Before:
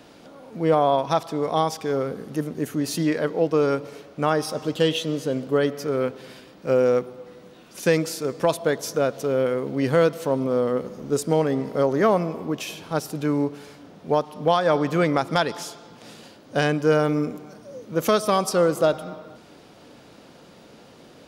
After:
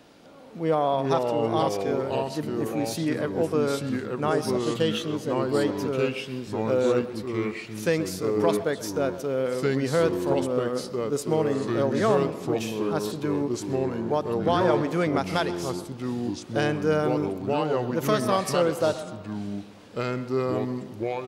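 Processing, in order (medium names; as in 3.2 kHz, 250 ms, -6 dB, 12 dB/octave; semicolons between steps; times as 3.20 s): ever faster or slower copies 276 ms, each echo -3 st, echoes 2; speakerphone echo 130 ms, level -15 dB; trim -4.5 dB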